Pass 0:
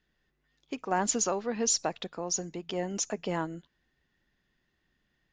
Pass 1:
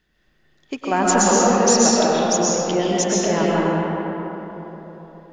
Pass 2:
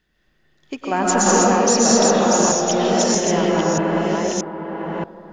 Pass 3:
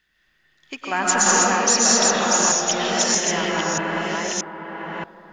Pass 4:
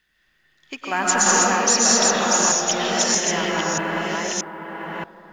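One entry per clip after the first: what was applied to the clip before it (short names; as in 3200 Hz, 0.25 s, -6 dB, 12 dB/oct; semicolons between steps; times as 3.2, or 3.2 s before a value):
digital reverb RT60 3.9 s, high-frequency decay 0.45×, pre-delay 85 ms, DRR -6.5 dB; gain +7.5 dB
reverse delay 0.63 s, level -1.5 dB; gain -1 dB
EQ curve 520 Hz 0 dB, 1800 Hz +13 dB, 5500 Hz +10 dB; gain -8 dB
companded quantiser 8-bit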